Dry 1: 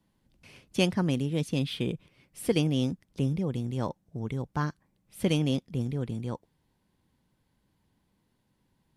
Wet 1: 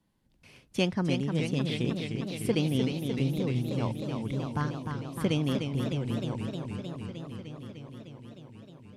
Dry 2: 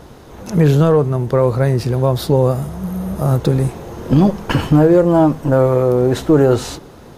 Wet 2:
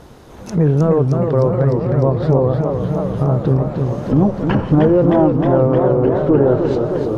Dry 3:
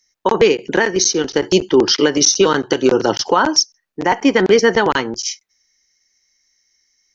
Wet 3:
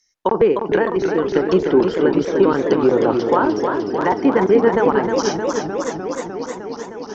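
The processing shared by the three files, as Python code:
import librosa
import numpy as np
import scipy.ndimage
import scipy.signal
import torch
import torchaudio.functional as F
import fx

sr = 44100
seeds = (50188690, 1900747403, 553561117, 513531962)

y = fx.env_lowpass_down(x, sr, base_hz=1200.0, full_db=-12.0)
y = fx.echo_warbled(y, sr, ms=306, feedback_pct=79, rate_hz=2.8, cents=148, wet_db=-6)
y = F.gain(torch.from_numpy(y), -2.0).numpy()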